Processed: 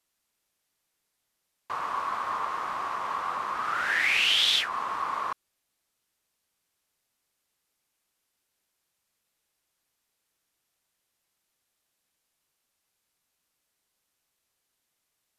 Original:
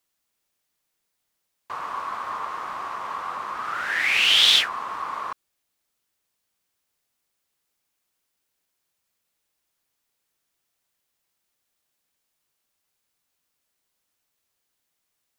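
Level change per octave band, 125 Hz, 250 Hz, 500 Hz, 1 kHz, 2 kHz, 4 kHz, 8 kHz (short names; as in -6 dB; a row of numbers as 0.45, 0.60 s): n/a, -1.5 dB, -1.0 dB, 0.0 dB, -3.0 dB, -6.5 dB, -6.0 dB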